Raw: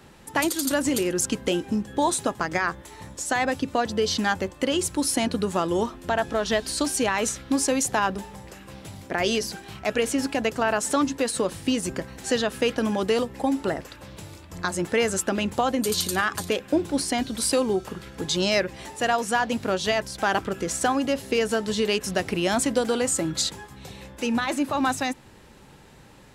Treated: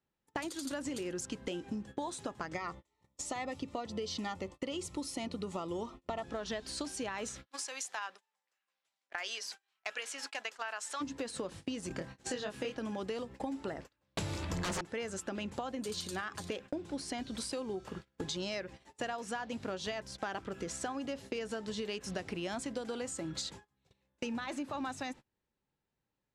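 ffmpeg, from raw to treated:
-filter_complex "[0:a]asettb=1/sr,asplit=3[a][b][c];[a]atrim=end=2.544[d];[b]atrim=start=2.54:end=6.24,asetpts=PTS-STARTPTS,afade=t=in:d=0.004:c=qsin,afade=t=out:st=3.696:d=0.004:c=qsin,asuperstop=centerf=1600:order=12:qfactor=5[e];[c]atrim=start=6.236[f];[d][e]acrossfade=d=0.004:c1=hsin:c2=qsin[g];[g][f]acrossfade=d=0.004:c1=qsin:c2=hsin,asplit=3[h][i][j];[h]afade=t=out:st=7.45:d=0.02[k];[i]highpass=1.1k,afade=t=in:st=7.45:d=0.02,afade=t=out:st=11:d=0.02[l];[j]afade=t=in:st=11:d=0.02[m];[k][l][m]amix=inputs=3:normalize=0,asettb=1/sr,asplit=3[n][o][p];[n]atrim=end=11.884[q];[o]atrim=start=11.88:end=12.78,asetpts=PTS-STARTPTS,afade=t=in:d=0.004:c=qsin,afade=t=out:st=0.896:d=0.004:c=qsin,asplit=2[r][s];[s]adelay=24,volume=-2.5dB[t];[r][t]amix=inputs=2:normalize=0,atrim=end_sample=39690[u];[p]atrim=start=12.776[v];[q][u]acrossfade=d=0.004:c1=hsin:c2=qsin[w];[w][v]acrossfade=d=0.004:c1=qsin:c2=hsin,asettb=1/sr,asplit=3[x][y][z];[x]atrim=end=14.174[aa];[y]atrim=start=14.17:end=14.81,asetpts=PTS-STARTPTS,afade=t=in:d=0.004:c=qsin,afade=t=out:st=0.636:d=0.004:c=qsin,aeval=exprs='0.282*sin(PI/2*8.91*val(0)/0.282)':c=same[ab];[z]atrim=start=14.806[ac];[aa][ab]acrossfade=d=0.004:c1=hsin:c2=qsin[ad];[ad][ac]acrossfade=d=0.004:c1=qsin:c2=hsin,agate=range=-34dB:threshold=-35dB:ratio=16:detection=peak,acompressor=threshold=-33dB:ratio=6,lowpass=7.7k,volume=-3dB"

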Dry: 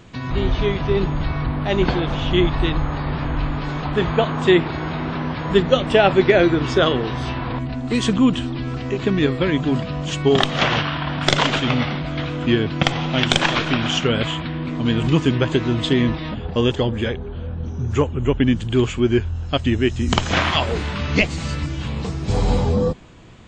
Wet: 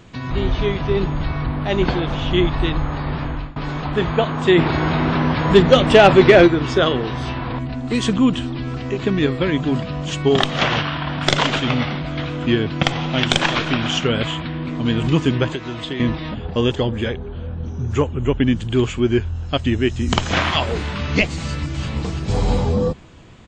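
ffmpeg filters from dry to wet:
-filter_complex "[0:a]asplit=3[a][b][c];[a]afade=t=out:st=4.57:d=0.02[d];[b]acontrast=73,afade=t=in:st=4.57:d=0.02,afade=t=out:st=6.46:d=0.02[e];[c]afade=t=in:st=6.46:d=0.02[f];[d][e][f]amix=inputs=3:normalize=0,asettb=1/sr,asplit=3[g][h][i];[g]atrim=end=15.494[j];[h]atrim=start=15.49:end=16,asetpts=PTS-STARTPTS,afade=t=in:d=0.004:c=qsin,afade=t=out:st=0.506:d=0.004:c=qsin,acrossover=split=480|4300[k][l][m];[k]acompressor=threshold=-30dB:ratio=4[n];[l]acompressor=threshold=-29dB:ratio=4[o];[m]acompressor=threshold=-44dB:ratio=4[p];[n][o][p]amix=inputs=3:normalize=0[q];[i]atrim=start=15.996[r];[j][q]acrossfade=d=0.004:c1=hsin:c2=qsin[s];[s][r]acrossfade=d=0.004:c1=qsin:c2=hsin,asplit=2[t][u];[u]afade=t=in:st=21.4:d=0.01,afade=t=out:st=21.85:d=0.01,aecho=0:1:340|680|1020|1360|1700:0.530884|0.238898|0.107504|0.0483768|0.0217696[v];[t][v]amix=inputs=2:normalize=0,asplit=2[w][x];[w]atrim=end=3.56,asetpts=PTS-STARTPTS,afade=t=out:st=3.12:d=0.44:c=qsin:silence=0.0707946[y];[x]atrim=start=3.56,asetpts=PTS-STARTPTS,afade=t=in:d=0.004:c=hsin:silence=0.0707946[z];[y][z]concat=n=2:v=0:a=1"

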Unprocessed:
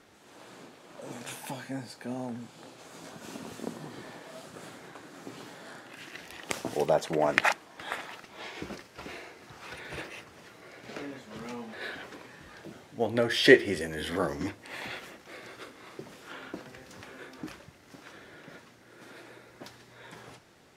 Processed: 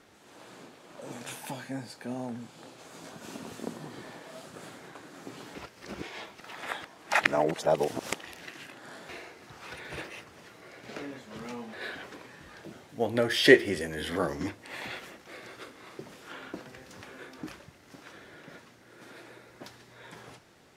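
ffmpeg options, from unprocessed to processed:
-filter_complex "[0:a]asettb=1/sr,asplit=3[a][b][c];[a]atrim=end=12.894[d];[b]atrim=start=12.89:end=13.69,asetpts=PTS-STARTPTS,afade=t=in:d=0.004:c=qsin,afade=t=out:st=0.796:d=0.004:c=qsin,highshelf=f=12k:g=8[e];[c]atrim=start=13.686[f];[d][e]acrossfade=d=0.004:c1=hsin:c2=qsin[g];[g][f]acrossfade=d=0.004:c1=qsin:c2=hsin,asplit=3[h][i][j];[h]atrim=end=5.552[k];[i]atrim=start=5.548:end=9.092,asetpts=PTS-STARTPTS,areverse[l];[j]atrim=start=9.088[m];[k][l]acrossfade=d=0.004:c1=hsin:c2=hsin[n];[n][m]acrossfade=d=0.004:c1=hsin:c2=hsin"

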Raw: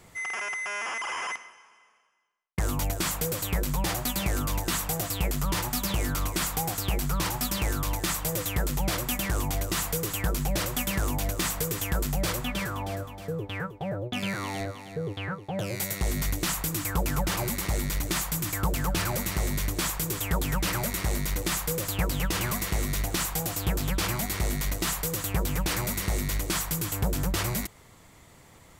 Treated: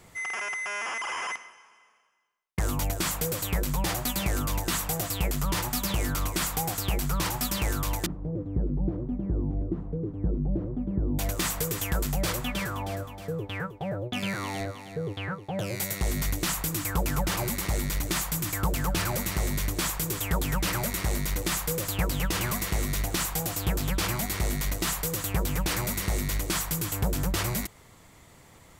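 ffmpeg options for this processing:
-filter_complex "[0:a]asettb=1/sr,asplit=3[a][b][c];[a]atrim=end=8.064[d];[b]atrim=start=8.06:end=11.19,asetpts=PTS-STARTPTS,afade=t=in:d=0.004:c=qsin,afade=t=out:st=3.126:d=0.004:c=qsin,lowpass=f=320:t=q:w=1.7[e];[c]atrim=start=11.186[f];[d][e]acrossfade=d=0.004:c1=hsin:c2=qsin[g];[g][f]acrossfade=d=0.004:c1=qsin:c2=hsin"

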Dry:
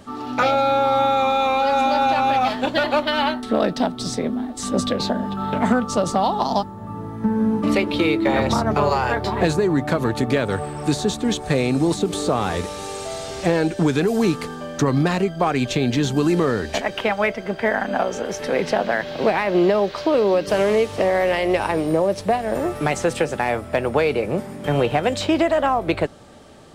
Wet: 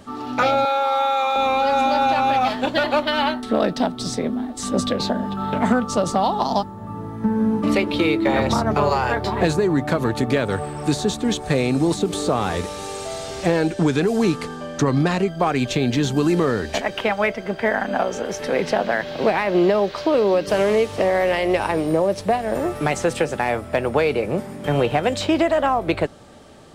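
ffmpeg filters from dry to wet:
-filter_complex "[0:a]asettb=1/sr,asplit=3[a][b][c];[a]atrim=end=0.654[d];[b]atrim=start=0.65:end=1.36,asetpts=PTS-STARTPTS,afade=t=in:d=0.004:c=qsin,afade=t=out:st=0.706:d=0.004:c=qsin,highpass=590[e];[c]atrim=start=1.356[f];[d][e]acrossfade=d=0.004:c1=hsin:c2=qsin[g];[g][f]acrossfade=d=0.004:c1=qsin:c2=hsin,asettb=1/sr,asplit=3[h][i][j];[h]atrim=end=13.724[k];[i]atrim=start=13.72:end=15.28,asetpts=PTS-STARTPTS,afade=t=in:d=0.004:c=qsin,afade=t=out:st=1.556:d=0.004:c=qsin,lowpass=11k[l];[j]atrim=start=15.276[m];[k][l]acrossfade=d=0.004:c1=hsin:c2=qsin[n];[n][m]acrossfade=d=0.004:c1=qsin:c2=hsin"

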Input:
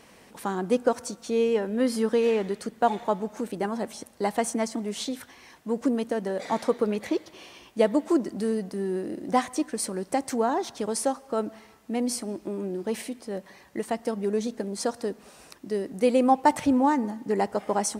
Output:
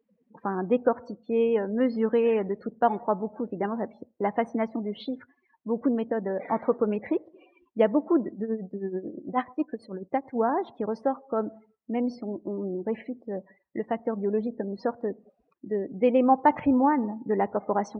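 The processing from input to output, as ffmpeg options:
-filter_complex "[0:a]asettb=1/sr,asplit=3[a][b][c];[a]atrim=end=8.314[d];[b]atrim=start=8.31:end=10.36,asetpts=PTS-STARTPTS,afade=t=in:d=0.004:c=qsin,afade=t=out:st=2.046:d=0.004:c=qsin,tremolo=f=9.2:d=0.74[e];[c]atrim=start=10.356[f];[d][e]acrossfade=d=0.004:c1=hsin:c2=qsin[g];[g][f]acrossfade=d=0.004:c1=qsin:c2=hsin,lowpass=2.8k,afftdn=nr=36:nf=-41"

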